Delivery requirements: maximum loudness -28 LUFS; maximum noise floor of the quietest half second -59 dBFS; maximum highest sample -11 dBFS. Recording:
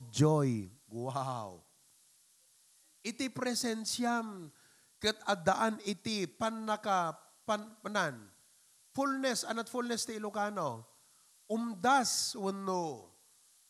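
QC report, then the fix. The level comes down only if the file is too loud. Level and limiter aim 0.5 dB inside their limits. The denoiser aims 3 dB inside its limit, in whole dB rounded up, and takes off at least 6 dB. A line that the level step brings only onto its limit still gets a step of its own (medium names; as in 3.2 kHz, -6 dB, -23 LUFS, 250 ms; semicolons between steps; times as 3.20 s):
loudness -34.5 LUFS: pass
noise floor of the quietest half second -67 dBFS: pass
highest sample -14.0 dBFS: pass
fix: none needed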